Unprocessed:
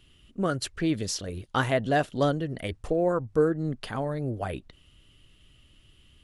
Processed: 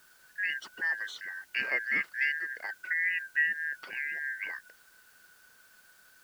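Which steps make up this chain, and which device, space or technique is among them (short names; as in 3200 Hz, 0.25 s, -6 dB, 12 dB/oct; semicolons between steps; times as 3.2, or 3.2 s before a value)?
split-band scrambled radio (four-band scrambler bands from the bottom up 2143; BPF 360–3100 Hz; white noise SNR 28 dB); gain -5 dB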